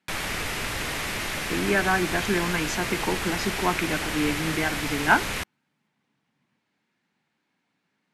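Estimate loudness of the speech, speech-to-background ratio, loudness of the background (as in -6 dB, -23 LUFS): -26.5 LUFS, 2.0 dB, -28.5 LUFS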